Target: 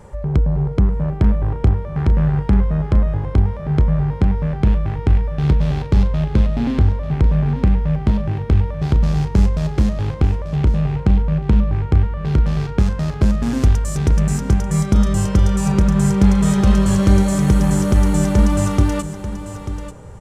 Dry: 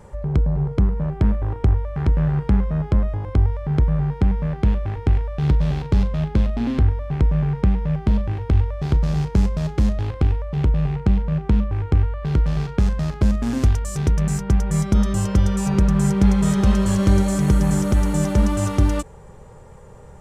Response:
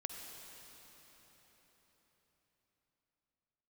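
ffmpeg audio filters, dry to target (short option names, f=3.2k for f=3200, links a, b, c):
-filter_complex "[0:a]aecho=1:1:889:0.266,asplit=2[a][b];[1:a]atrim=start_sample=2205,asetrate=24696,aresample=44100[c];[b][c]afir=irnorm=-1:irlink=0,volume=-17dB[d];[a][d]amix=inputs=2:normalize=0,volume=1.5dB"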